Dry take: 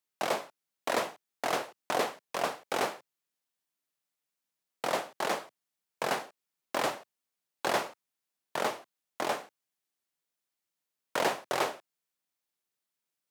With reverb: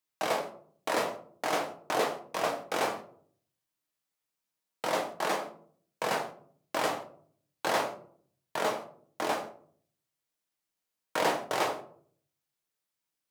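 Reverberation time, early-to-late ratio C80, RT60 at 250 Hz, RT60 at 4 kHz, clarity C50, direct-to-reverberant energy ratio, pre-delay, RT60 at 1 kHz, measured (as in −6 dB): 0.55 s, 14.0 dB, 0.75 s, 0.30 s, 10.5 dB, 2.5 dB, 6 ms, 0.50 s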